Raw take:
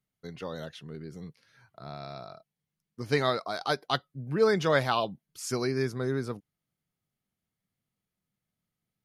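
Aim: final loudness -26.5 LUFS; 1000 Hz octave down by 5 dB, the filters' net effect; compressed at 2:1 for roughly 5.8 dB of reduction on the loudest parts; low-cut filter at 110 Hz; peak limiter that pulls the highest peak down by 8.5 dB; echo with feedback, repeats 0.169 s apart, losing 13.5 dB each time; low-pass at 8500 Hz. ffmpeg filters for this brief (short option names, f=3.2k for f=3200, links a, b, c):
-af "highpass=110,lowpass=8.5k,equalizer=f=1k:t=o:g=-7,acompressor=threshold=-31dB:ratio=2,alimiter=level_in=0.5dB:limit=-24dB:level=0:latency=1,volume=-0.5dB,aecho=1:1:169|338:0.211|0.0444,volume=11.5dB"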